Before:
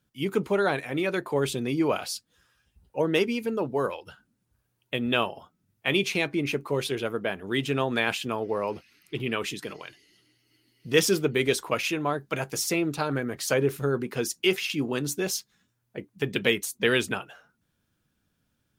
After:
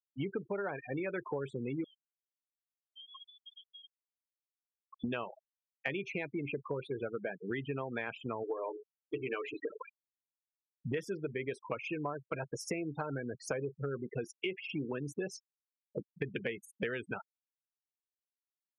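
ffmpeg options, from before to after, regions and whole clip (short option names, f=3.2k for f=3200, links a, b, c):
-filter_complex "[0:a]asettb=1/sr,asplit=3[a][b][c];[a]atrim=end=1.844[d];[b]atrim=start=1.84:end=5.04,asetpts=PTS-STARTPTS,afade=t=in:d=0.004:c=qsin,afade=t=out:st=3.196:d=0.004:c=qsin,acompressor=threshold=-42dB:ratio=4:attack=3.2:release=140:knee=1:detection=peak,aemphasis=mode=production:type=bsi,lowpass=f=3.1k:t=q:w=0.5098,lowpass=f=3.1k:t=q:w=0.6013,lowpass=f=3.1k:t=q:w=0.9,lowpass=f=3.1k:t=q:w=2.563,afreqshift=-3700[e];[c]atrim=start=5.036[f];[d][e]acrossfade=d=0.004:c1=hsin:c2=qsin[g];[g][f]acrossfade=d=0.004:c1=qsin:c2=hsin,asettb=1/sr,asplit=3[h][i][j];[h]atrim=end=8.434[k];[i]atrim=start=8.43:end=9.7,asetpts=PTS-STARTPTS,afade=t=in:d=0.004:c=qsin,afade=t=out:st=1.266:d=0.004:c=qsin,lowshelf=f=260:t=q:w=1.5:g=-7,bandreject=f=60:t=h:w=6,bandreject=f=120:t=h:w=6,bandreject=f=180:t=h:w=6,bandreject=f=240:t=h:w=6,bandreject=f=300:t=h:w=6,bandreject=f=360:t=h:w=6,bandreject=f=420:t=h:w=6,bandreject=f=480:t=h:w=6,bandreject=f=540:t=h:w=6,bandreject=f=600:t=h:w=6,aecho=1:1:6.7:0.4,atrim=end_sample=56007[l];[j]atrim=start=9.696[m];[k][l]acrossfade=d=0.004:c1=hsin:c2=qsin[n];[n][m]acrossfade=d=0.004:c1=qsin:c2=hsin,afftfilt=real='re*gte(hypot(re,im),0.0501)':imag='im*gte(hypot(re,im),0.0501)':win_size=1024:overlap=0.75,equalizer=f=125:t=o:w=1:g=4,equalizer=f=500:t=o:w=1:g=4,equalizer=f=1k:t=o:w=1:g=3,equalizer=f=2k:t=o:w=1:g=6,equalizer=f=4k:t=o:w=1:g=-10,equalizer=f=8k:t=o:w=1:g=-7,acompressor=threshold=-34dB:ratio=10"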